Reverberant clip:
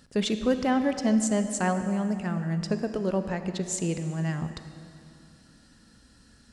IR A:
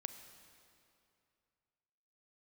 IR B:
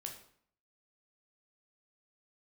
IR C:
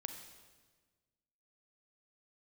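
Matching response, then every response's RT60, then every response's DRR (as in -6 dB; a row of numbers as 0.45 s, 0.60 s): A; 2.6 s, 0.60 s, 1.4 s; 8.5 dB, 1.5 dB, 5.5 dB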